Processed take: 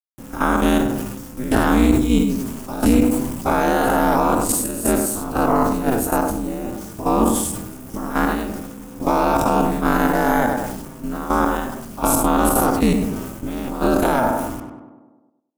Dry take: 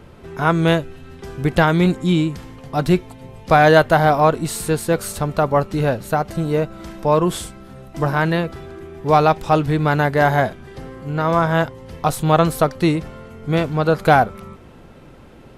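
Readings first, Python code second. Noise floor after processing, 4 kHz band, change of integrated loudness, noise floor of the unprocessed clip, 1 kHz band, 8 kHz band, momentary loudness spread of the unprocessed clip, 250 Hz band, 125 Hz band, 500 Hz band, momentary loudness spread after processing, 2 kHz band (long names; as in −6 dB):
−47 dBFS, −3.5 dB, −1.0 dB, −43 dBFS, −1.5 dB, +8.0 dB, 19 LU, +3.0 dB, −7.5 dB, −3.5 dB, 13 LU, −4.0 dB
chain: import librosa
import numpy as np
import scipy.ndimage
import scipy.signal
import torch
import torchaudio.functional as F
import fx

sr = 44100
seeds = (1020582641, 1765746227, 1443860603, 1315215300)

p1 = fx.spec_dilate(x, sr, span_ms=120)
p2 = fx.high_shelf(p1, sr, hz=2100.0, db=11.5)
p3 = fx.level_steps(p2, sr, step_db=12)
p4 = fx.quant_dither(p3, sr, seeds[0], bits=6, dither='none')
p5 = p4 * np.sin(2.0 * np.pi * 120.0 * np.arange(len(p4)) / sr)
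p6 = fx.graphic_eq(p5, sr, hz=(250, 500, 2000, 4000), db=(6, -5, -8, -12))
p7 = p6 + fx.echo_tape(p6, sr, ms=100, feedback_pct=41, wet_db=-7, lp_hz=1600.0, drive_db=1.0, wow_cents=18, dry=0)
y = fx.sustainer(p7, sr, db_per_s=42.0)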